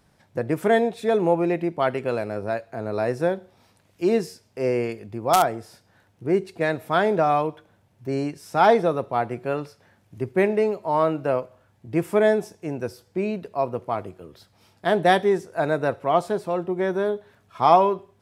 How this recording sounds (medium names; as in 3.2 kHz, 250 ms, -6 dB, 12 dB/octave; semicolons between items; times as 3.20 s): noise floor -62 dBFS; spectral tilt -5.0 dB/octave